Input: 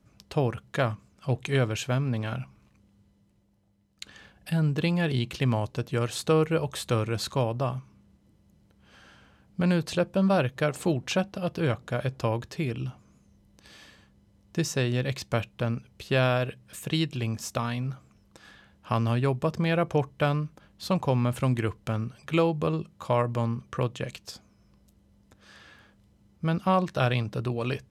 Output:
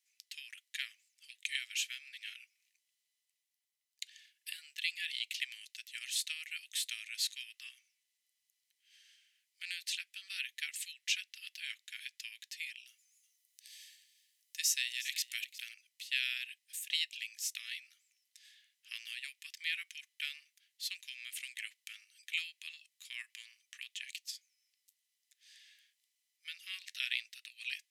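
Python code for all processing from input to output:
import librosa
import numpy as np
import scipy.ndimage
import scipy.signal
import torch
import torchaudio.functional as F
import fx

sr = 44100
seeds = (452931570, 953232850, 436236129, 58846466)

y = fx.chain(x, sr, fx.high_shelf(hz=7200.0, db=9.5),
    fx.echo_single(ms=362, db=-16.5), at=(12.87, 15.74))
y = fx.dynamic_eq(y, sr, hz=2500.0, q=0.9, threshold_db=-46.0, ratio=4.0, max_db=5)
y = scipy.signal.sosfilt(scipy.signal.cheby1(5, 1.0, 1900.0, 'highpass', fs=sr, output='sos'), y)
y = fx.high_shelf(y, sr, hz=3800.0, db=10.5)
y = y * librosa.db_to_amplitude(-8.5)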